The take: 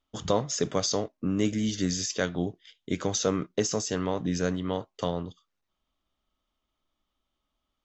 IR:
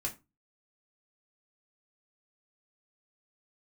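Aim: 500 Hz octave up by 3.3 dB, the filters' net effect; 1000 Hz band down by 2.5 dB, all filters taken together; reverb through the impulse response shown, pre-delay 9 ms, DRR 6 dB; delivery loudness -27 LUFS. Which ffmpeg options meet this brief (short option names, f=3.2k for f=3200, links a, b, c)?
-filter_complex "[0:a]equalizer=f=500:t=o:g=5,equalizer=f=1k:t=o:g=-5.5,asplit=2[a][b];[1:a]atrim=start_sample=2205,adelay=9[c];[b][c]afir=irnorm=-1:irlink=0,volume=-7.5dB[d];[a][d]amix=inputs=2:normalize=0,volume=-0.5dB"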